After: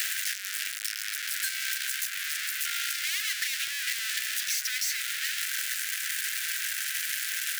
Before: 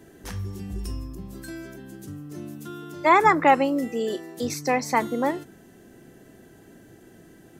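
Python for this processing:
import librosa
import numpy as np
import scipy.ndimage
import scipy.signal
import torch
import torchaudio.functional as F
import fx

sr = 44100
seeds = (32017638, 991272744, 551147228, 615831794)

y = np.sign(x) * np.sqrt(np.mean(np.square(x)))
y = scipy.signal.sosfilt(scipy.signal.butter(12, 1500.0, 'highpass', fs=sr, output='sos'), y)
y = fx.band_squash(y, sr, depth_pct=100)
y = F.gain(torch.from_numpy(y), 1.0).numpy()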